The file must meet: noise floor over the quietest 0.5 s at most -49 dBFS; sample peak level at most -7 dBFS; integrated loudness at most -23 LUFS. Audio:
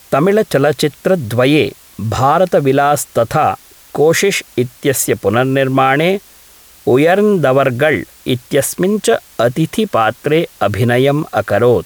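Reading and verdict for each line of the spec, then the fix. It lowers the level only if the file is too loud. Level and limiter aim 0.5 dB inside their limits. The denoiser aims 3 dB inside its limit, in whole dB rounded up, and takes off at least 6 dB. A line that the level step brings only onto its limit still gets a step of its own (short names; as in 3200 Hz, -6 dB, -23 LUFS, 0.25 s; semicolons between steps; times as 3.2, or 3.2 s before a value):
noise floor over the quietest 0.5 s -43 dBFS: fail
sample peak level -2.0 dBFS: fail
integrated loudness -13.5 LUFS: fail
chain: gain -10 dB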